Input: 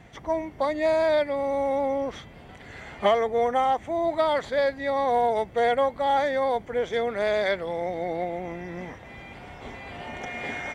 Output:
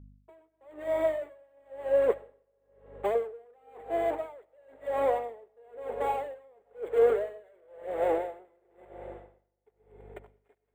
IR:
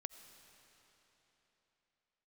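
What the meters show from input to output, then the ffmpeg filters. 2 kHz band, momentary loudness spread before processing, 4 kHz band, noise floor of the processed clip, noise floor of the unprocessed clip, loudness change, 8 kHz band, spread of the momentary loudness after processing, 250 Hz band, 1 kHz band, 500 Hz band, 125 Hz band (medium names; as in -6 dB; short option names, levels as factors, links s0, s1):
-13.5 dB, 17 LU, under -15 dB, -76 dBFS, -46 dBFS, -5.0 dB, no reading, 23 LU, -11.0 dB, -10.5 dB, -5.0 dB, under -10 dB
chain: -filter_complex "[0:a]aemphasis=mode=reproduction:type=bsi,agate=range=0.0282:threshold=0.0447:ratio=16:detection=peak,areverse,acompressor=threshold=0.0282:ratio=6,areverse,aeval=exprs='sgn(val(0))*max(abs(val(0))-0.00141,0)':c=same,asplit=2[s0][s1];[s1]highpass=f=720:p=1,volume=25.1,asoftclip=type=tanh:threshold=0.0668[s2];[s0][s2]amix=inputs=2:normalize=0,lowpass=f=1800:p=1,volume=0.501,acrossover=split=2700[s3][s4];[s3]highpass=f=420:t=q:w=4.9[s5];[s4]acrusher=samples=8:mix=1:aa=0.000001[s6];[s5][s6]amix=inputs=2:normalize=0,aphaser=in_gain=1:out_gain=1:delay=3:decay=0.34:speed=1.9:type=triangular,aeval=exprs='val(0)+0.00447*(sin(2*PI*50*n/s)+sin(2*PI*2*50*n/s)/2+sin(2*PI*3*50*n/s)/3+sin(2*PI*4*50*n/s)/4+sin(2*PI*5*50*n/s)/5)':c=same[s7];[1:a]atrim=start_sample=2205[s8];[s7][s8]afir=irnorm=-1:irlink=0,aeval=exprs='val(0)*pow(10,-36*(0.5-0.5*cos(2*PI*0.99*n/s))/20)':c=same,volume=1.33"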